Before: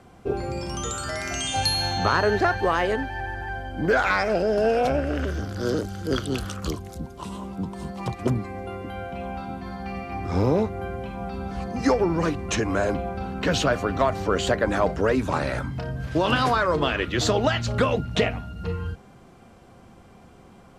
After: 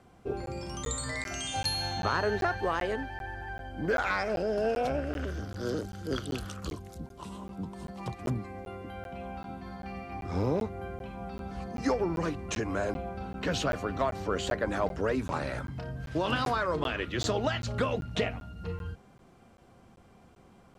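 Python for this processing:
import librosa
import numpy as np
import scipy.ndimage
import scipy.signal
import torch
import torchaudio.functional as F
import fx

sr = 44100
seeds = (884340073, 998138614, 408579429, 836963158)

y = fx.ripple_eq(x, sr, per_octave=1.0, db=17, at=(0.82, 1.24), fade=0.02)
y = fx.buffer_crackle(y, sr, first_s=0.46, period_s=0.39, block=512, kind='zero')
y = F.gain(torch.from_numpy(y), -7.5).numpy()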